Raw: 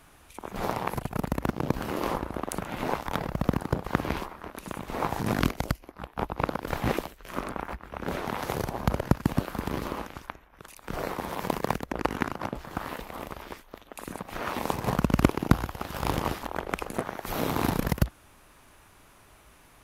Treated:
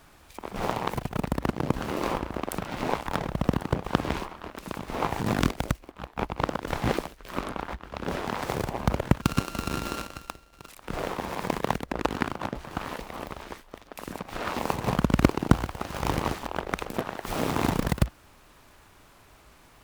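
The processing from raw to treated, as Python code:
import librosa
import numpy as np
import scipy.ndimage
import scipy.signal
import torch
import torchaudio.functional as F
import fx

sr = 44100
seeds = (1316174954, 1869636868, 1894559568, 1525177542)

y = fx.sample_sort(x, sr, block=32, at=(9.22, 10.69))
y = fx.noise_mod_delay(y, sr, seeds[0], noise_hz=1300.0, depth_ms=0.045)
y = y * 10.0 ** (1.0 / 20.0)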